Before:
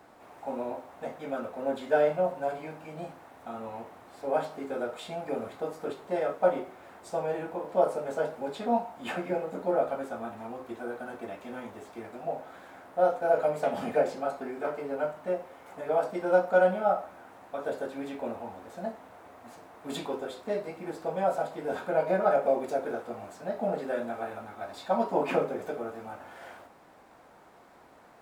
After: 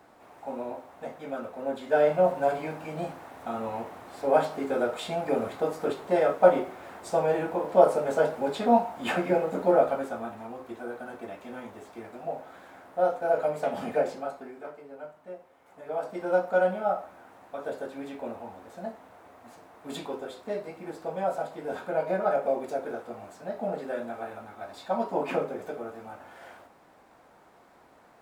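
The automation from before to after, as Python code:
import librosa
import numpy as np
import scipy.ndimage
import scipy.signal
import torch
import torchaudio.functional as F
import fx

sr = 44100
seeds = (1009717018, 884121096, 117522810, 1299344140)

y = fx.gain(x, sr, db=fx.line((1.83, -1.0), (2.28, 6.0), (9.72, 6.0), (10.47, -0.5), (14.1, -0.5), (14.84, -11.5), (15.54, -11.5), (16.22, -1.5)))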